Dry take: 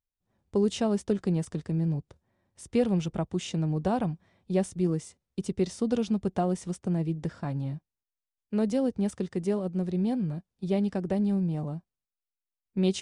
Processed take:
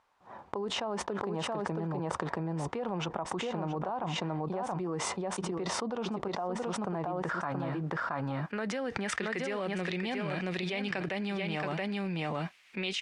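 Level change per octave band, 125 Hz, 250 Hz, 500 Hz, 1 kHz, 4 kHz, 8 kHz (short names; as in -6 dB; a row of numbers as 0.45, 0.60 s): -6.5, -7.5, -4.0, +4.0, +5.0, +1.5 dB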